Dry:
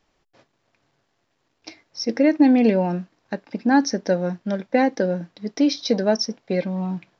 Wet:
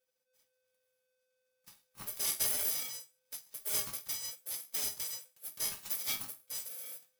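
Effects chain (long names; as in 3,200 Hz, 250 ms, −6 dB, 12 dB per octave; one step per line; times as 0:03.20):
samples in bit-reversed order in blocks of 256 samples
resonators tuned to a chord G#2 major, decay 0.3 s
ring modulator with a square carrier 510 Hz
level −4 dB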